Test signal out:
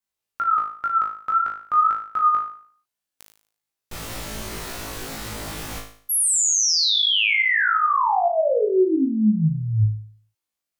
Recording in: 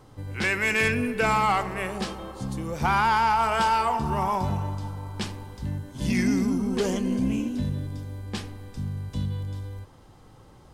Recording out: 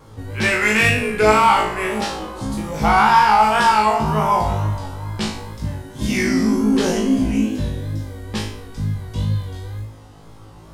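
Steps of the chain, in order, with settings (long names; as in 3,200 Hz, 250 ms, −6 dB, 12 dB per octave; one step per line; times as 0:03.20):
tape wow and flutter 100 cents
flutter between parallel walls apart 3.2 metres, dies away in 0.51 s
level +4.5 dB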